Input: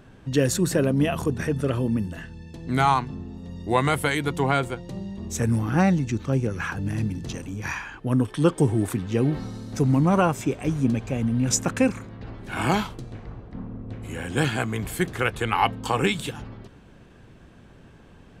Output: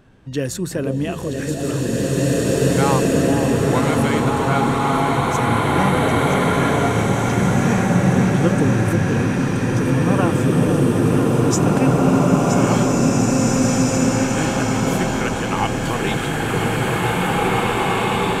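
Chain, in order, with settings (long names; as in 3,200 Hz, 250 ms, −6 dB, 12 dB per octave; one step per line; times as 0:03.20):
delay that swaps between a low-pass and a high-pass 487 ms, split 810 Hz, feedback 70%, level −4.5 dB
slow-attack reverb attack 2,340 ms, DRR −7.5 dB
level −2 dB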